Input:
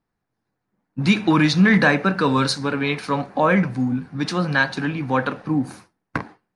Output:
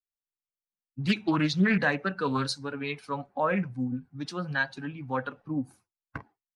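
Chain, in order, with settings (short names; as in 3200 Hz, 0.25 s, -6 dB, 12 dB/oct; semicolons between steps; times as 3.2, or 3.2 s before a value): per-bin expansion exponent 1.5; Doppler distortion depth 0.36 ms; gain -7 dB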